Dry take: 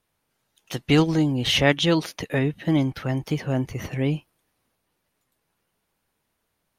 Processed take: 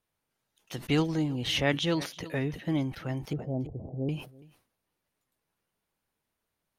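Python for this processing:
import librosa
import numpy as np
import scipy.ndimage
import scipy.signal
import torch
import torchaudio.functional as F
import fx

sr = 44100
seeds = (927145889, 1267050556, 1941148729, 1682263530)

y = fx.steep_lowpass(x, sr, hz=780.0, slope=48, at=(3.33, 4.09))
y = y + 10.0 ** (-22.5 / 20.0) * np.pad(y, (int(333 * sr / 1000.0), 0))[:len(y)]
y = fx.sustainer(y, sr, db_per_s=130.0)
y = y * librosa.db_to_amplitude(-8.0)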